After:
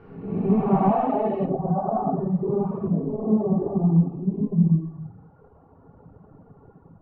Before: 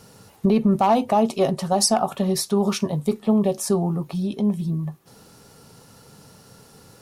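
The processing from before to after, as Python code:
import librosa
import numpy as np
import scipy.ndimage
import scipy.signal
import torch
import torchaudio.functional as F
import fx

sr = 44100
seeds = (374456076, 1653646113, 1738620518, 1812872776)

y = fx.spec_blur(x, sr, span_ms=379.0)
y = fx.lowpass(y, sr, hz=fx.steps((0.0, 2000.0), (1.45, 1100.0)), slope=24)
y = fx.room_shoebox(y, sr, seeds[0], volume_m3=570.0, walls='furnished', distance_m=3.5)
y = fx.dereverb_blind(y, sr, rt60_s=1.9)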